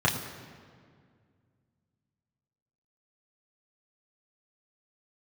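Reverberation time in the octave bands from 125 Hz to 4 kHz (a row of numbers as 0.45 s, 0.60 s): 2.8 s, 2.7 s, 2.2 s, 1.9 s, 1.7 s, 1.4 s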